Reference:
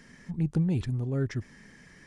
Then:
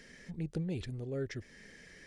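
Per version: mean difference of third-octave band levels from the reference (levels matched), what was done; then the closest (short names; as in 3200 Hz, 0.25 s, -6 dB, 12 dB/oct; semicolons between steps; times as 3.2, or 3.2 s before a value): 5.0 dB: ten-band EQ 125 Hz -6 dB, 250 Hz -4 dB, 500 Hz +7 dB, 1000 Hz -9 dB, 2000 Hz +3 dB, 4000 Hz +4 dB; in parallel at -1 dB: compressor, threshold -43 dBFS, peak gain reduction 15.5 dB; on the sum: gain -7 dB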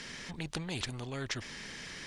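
15.0 dB: bell 3500 Hz +12.5 dB 1.6 oct; spectral compressor 2:1; gain +1 dB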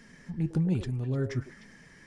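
1.5 dB: flange 1.2 Hz, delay 4 ms, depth 5.7 ms, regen +71%; on a send: delay with a stepping band-pass 0.101 s, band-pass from 520 Hz, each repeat 1.4 oct, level -4.5 dB; on the sum: gain +3.5 dB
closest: third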